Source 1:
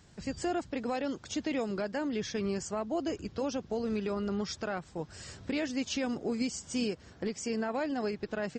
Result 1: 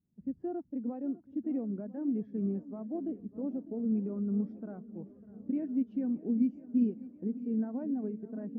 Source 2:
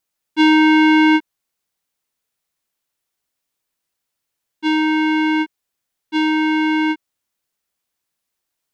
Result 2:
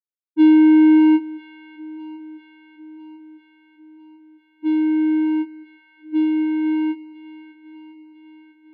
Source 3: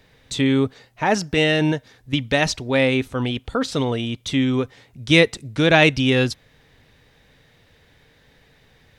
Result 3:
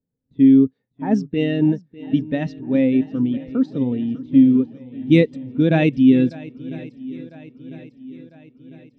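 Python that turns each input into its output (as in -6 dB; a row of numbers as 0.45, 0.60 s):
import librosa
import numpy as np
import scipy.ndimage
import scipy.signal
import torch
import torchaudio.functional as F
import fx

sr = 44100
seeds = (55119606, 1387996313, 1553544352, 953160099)

p1 = np.sign(x) * np.maximum(np.abs(x) - 10.0 ** (-37.5 / 20.0), 0.0)
p2 = x + (p1 * librosa.db_to_amplitude(-12.0))
p3 = fx.peak_eq(p2, sr, hz=230.0, db=11.5, octaves=1.4)
p4 = fx.env_lowpass(p3, sr, base_hz=1100.0, full_db=-4.0)
p5 = fx.high_shelf(p4, sr, hz=7900.0, db=7.5)
p6 = p5 + fx.echo_swing(p5, sr, ms=1000, ratio=1.5, feedback_pct=64, wet_db=-13.0, dry=0)
p7 = fx.spectral_expand(p6, sr, expansion=1.5)
y = p7 * librosa.db_to_amplitude(-8.0)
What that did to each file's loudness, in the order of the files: 0.0, -1.0, +1.5 LU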